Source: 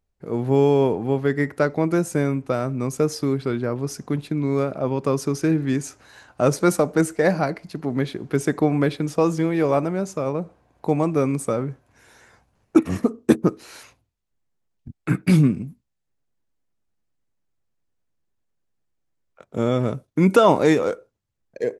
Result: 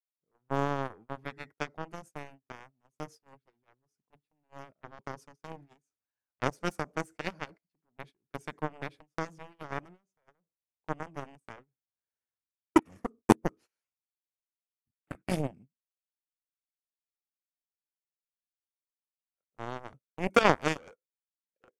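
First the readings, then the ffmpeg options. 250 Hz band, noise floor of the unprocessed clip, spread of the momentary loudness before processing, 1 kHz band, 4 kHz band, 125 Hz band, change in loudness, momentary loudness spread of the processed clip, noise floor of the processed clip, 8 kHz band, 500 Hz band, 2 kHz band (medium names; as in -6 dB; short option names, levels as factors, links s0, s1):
-15.0 dB, -75 dBFS, 10 LU, -7.5 dB, -7.0 dB, -17.5 dB, -11.5 dB, 23 LU, under -85 dBFS, -14.0 dB, -15.5 dB, -6.5 dB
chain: -af "aeval=exprs='0.75*(cos(1*acos(clip(val(0)/0.75,-1,1)))-cos(1*PI/2))+0.266*(cos(3*acos(clip(val(0)/0.75,-1,1)))-cos(3*PI/2))':c=same,bandreject=f=4000:w=11,agate=range=0.0562:threshold=0.00398:ratio=16:detection=peak,volume=0.841"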